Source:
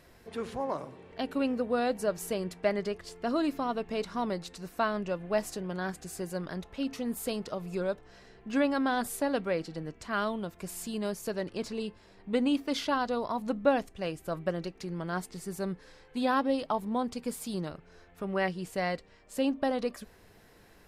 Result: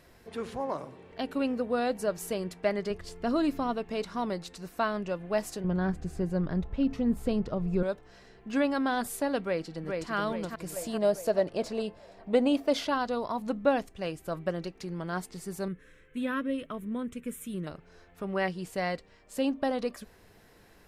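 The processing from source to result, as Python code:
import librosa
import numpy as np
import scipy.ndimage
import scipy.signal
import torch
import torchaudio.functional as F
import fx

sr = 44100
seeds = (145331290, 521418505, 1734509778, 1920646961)

y = fx.low_shelf(x, sr, hz=150.0, db=11.0, at=(2.9, 3.75))
y = fx.riaa(y, sr, side='playback', at=(5.64, 7.83))
y = fx.echo_throw(y, sr, start_s=9.41, length_s=0.72, ms=420, feedback_pct=50, wet_db=-3.5)
y = fx.peak_eq(y, sr, hz=640.0, db=13.5, octaves=0.63, at=(10.76, 12.88))
y = fx.fixed_phaser(y, sr, hz=2000.0, stages=4, at=(15.68, 17.67))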